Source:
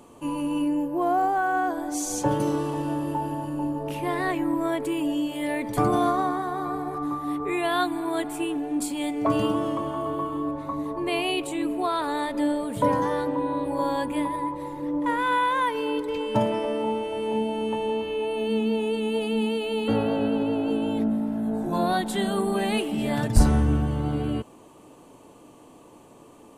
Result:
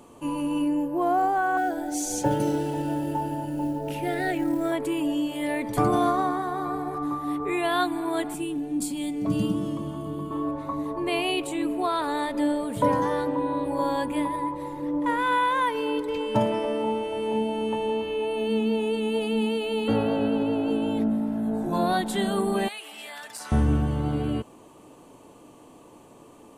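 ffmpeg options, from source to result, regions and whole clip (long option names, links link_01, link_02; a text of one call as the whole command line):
ffmpeg -i in.wav -filter_complex "[0:a]asettb=1/sr,asplit=3[link_01][link_02][link_03];[link_01]atrim=end=1.574[link_04];[link_02]atrim=start=1.57:end=4.72,asetpts=PTS-STARTPTS,afade=type=in:duration=0.004:curve=qsin,afade=type=out:start_time=3.146:duration=0.004:curve=qsin,acrusher=bits=8:mode=log:mix=0:aa=0.000001,asuperstop=centerf=1100:order=8:qfactor=3.6[link_05];[link_03]atrim=start=4.716[link_06];[link_04][link_05]acrossfade=duration=0.004:curve1=hsin:curve2=qsin[link_07];[link_07][link_06]acrossfade=duration=0.004:curve1=qsin:curve2=hsin,asettb=1/sr,asplit=3[link_08][link_09][link_10];[link_08]atrim=end=8.344[link_11];[link_09]atrim=start=8.34:end=10.31,asetpts=PTS-STARTPTS,afade=type=in:duration=0.004:curve=qsin,afade=type=out:start_time=1.966:duration=0.004:curve=qsin,equalizer=frequency=180:width_type=o:width=0.42:gain=13,acrossover=split=360|3000[link_12][link_13][link_14];[link_13]acompressor=threshold=-50dB:ratio=2:attack=3.2:release=140:knee=2.83:detection=peak[link_15];[link_12][link_15][link_14]amix=inputs=3:normalize=0[link_16];[link_10]atrim=start=10.306[link_17];[link_11][link_16]acrossfade=duration=0.004:curve1=hsin:curve2=qsin[link_18];[link_18][link_17]acrossfade=duration=0.004:curve1=qsin:curve2=hsin,asettb=1/sr,asplit=3[link_19][link_20][link_21];[link_19]atrim=end=22.684[link_22];[link_20]atrim=start=22.68:end=23.52,asetpts=PTS-STARTPTS,afade=type=in:duration=0.004:curve=qsin,afade=type=out:start_time=0.836:duration=0.004:curve=qsin,highpass=1200,acompressor=threshold=-35dB:ratio=4:attack=3.2:release=140:knee=1:detection=peak[link_23];[link_21]atrim=start=23.516[link_24];[link_22][link_23]acrossfade=duration=0.004:curve1=hsin:curve2=qsin[link_25];[link_25][link_24]acrossfade=duration=0.004:curve1=qsin:curve2=hsin" out.wav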